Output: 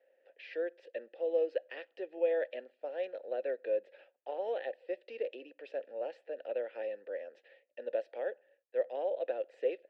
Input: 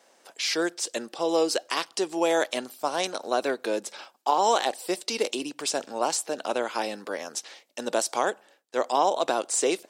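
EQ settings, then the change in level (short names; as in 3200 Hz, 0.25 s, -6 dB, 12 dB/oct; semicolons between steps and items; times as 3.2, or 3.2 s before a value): vowel filter e; HPF 210 Hz 12 dB/oct; air absorption 390 m; 0.0 dB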